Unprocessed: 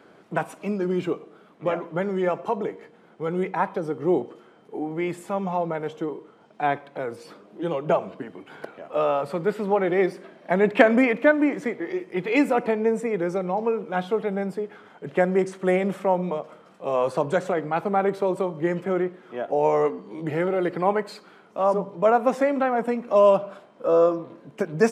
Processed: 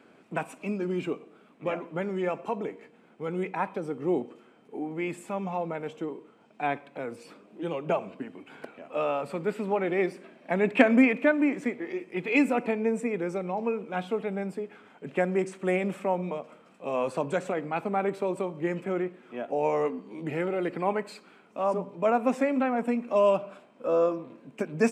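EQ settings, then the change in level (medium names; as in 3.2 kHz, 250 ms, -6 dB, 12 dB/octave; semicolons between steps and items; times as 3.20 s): graphic EQ with 31 bands 250 Hz +8 dB, 2.5 kHz +9 dB, 8 kHz +6 dB; -6.0 dB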